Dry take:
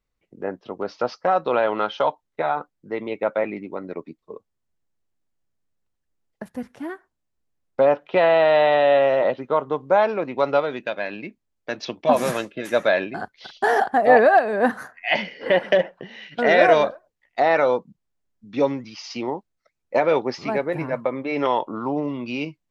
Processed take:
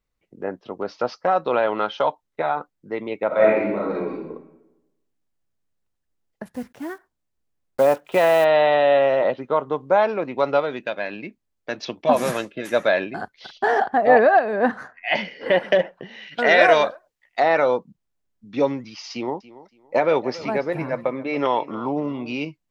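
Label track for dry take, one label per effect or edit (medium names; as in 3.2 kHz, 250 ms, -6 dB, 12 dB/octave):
3.270000	4.210000	reverb throw, RT60 1 s, DRR -6.5 dB
6.540000	8.460000	block-companded coder 5-bit
13.580000	15.150000	distance through air 100 m
16.270000	17.440000	tilt shelf lows -4.5 dB, about 650 Hz
19.120000	22.330000	feedback delay 282 ms, feedback 25%, level -18 dB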